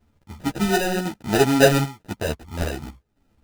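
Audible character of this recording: chopped level 0.95 Hz, depth 60%, duty 75%; aliases and images of a low sample rate 1100 Hz, jitter 0%; a shimmering, thickened sound

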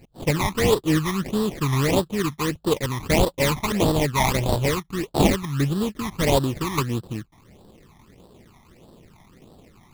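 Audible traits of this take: aliases and images of a low sample rate 1500 Hz, jitter 20%; phasing stages 12, 1.6 Hz, lowest notch 470–2200 Hz

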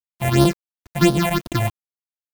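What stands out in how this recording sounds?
a buzz of ramps at a fixed pitch in blocks of 128 samples; phasing stages 6, 2.9 Hz, lowest notch 310–2200 Hz; a quantiser's noise floor 8-bit, dither none; noise-modulated level

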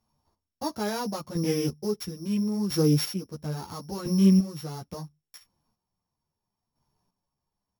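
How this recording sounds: a buzz of ramps at a fixed pitch in blocks of 8 samples; chopped level 0.74 Hz, depth 65%, duty 25%; a shimmering, thickened sound

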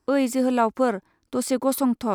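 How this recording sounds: noise floor -73 dBFS; spectral tilt -4.5 dB/oct

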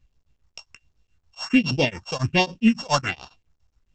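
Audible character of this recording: a buzz of ramps at a fixed pitch in blocks of 16 samples; phasing stages 4, 1.3 Hz, lowest notch 310–2000 Hz; tremolo triangle 7.2 Hz, depth 100%; µ-law

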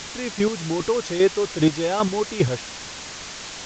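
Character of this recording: chopped level 2.5 Hz, depth 65%, duty 20%; a quantiser's noise floor 6-bit, dither triangular; A-law

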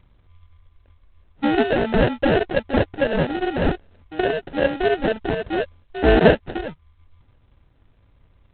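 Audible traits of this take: aliases and images of a low sample rate 1100 Hz, jitter 0%; G.726

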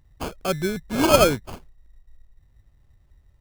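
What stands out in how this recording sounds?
phasing stages 2, 0.88 Hz, lowest notch 800–1800 Hz; aliases and images of a low sample rate 1900 Hz, jitter 0%

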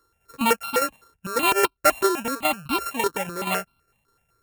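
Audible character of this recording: a buzz of ramps at a fixed pitch in blocks of 32 samples; tremolo saw down 4.9 Hz, depth 55%; notches that jump at a steady rate 7.9 Hz 690–1800 Hz

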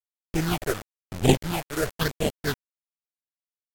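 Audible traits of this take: aliases and images of a low sample rate 1100 Hz, jitter 20%; phasing stages 6, 0.99 Hz, lowest notch 210–1500 Hz; a quantiser's noise floor 6-bit, dither none; AAC

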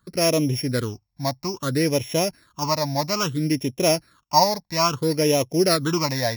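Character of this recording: a buzz of ramps at a fixed pitch in blocks of 8 samples; phasing stages 8, 0.6 Hz, lowest notch 380–1400 Hz

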